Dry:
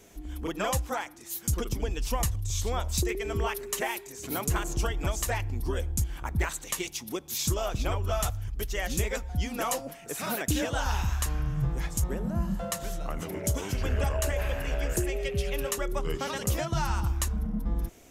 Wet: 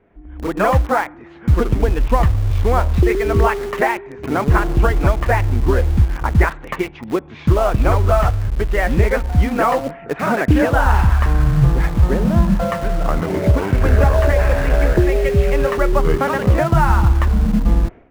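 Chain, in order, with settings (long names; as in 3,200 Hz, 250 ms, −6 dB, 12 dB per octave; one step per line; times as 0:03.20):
low-pass filter 2,000 Hz 24 dB per octave
automatic gain control gain up to 14.5 dB
in parallel at −10 dB: bit reduction 4 bits
on the sum: level −1 dB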